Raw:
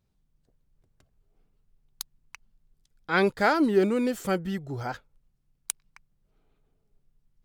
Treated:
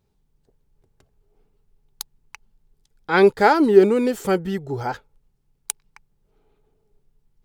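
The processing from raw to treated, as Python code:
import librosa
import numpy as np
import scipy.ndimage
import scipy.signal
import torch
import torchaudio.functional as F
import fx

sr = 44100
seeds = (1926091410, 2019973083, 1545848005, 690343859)

y = fx.small_body(x, sr, hz=(420.0, 850.0), ring_ms=35, db=9)
y = y * 10.0 ** (4.0 / 20.0)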